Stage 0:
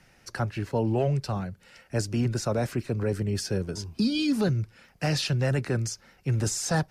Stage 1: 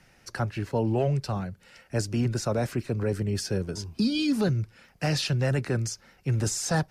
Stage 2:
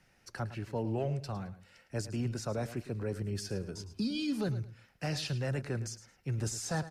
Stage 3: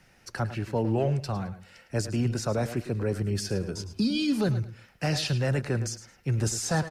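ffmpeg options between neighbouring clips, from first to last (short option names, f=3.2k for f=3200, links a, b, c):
-af anull
-af "aecho=1:1:108|216:0.2|0.0439,volume=-8.5dB"
-filter_complex "[0:a]asplit=2[a][b];[b]adelay=100,highpass=300,lowpass=3.4k,asoftclip=type=hard:threshold=-32.5dB,volume=-14dB[c];[a][c]amix=inputs=2:normalize=0,volume=7.5dB"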